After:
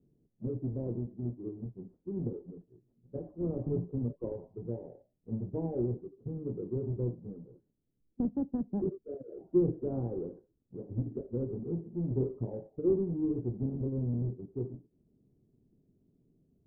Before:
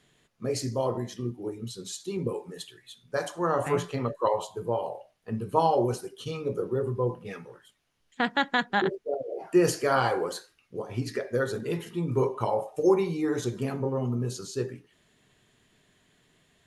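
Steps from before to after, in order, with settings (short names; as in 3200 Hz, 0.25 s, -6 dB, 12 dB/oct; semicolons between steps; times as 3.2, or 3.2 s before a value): half-waves squared off; ladder low-pass 420 Hz, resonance 25%; gain -1.5 dB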